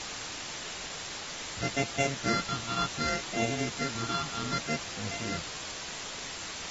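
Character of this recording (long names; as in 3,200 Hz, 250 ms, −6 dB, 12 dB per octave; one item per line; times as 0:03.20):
a buzz of ramps at a fixed pitch in blocks of 64 samples
phaser sweep stages 6, 0.65 Hz, lowest notch 560–1,200 Hz
a quantiser's noise floor 6 bits, dither triangular
AAC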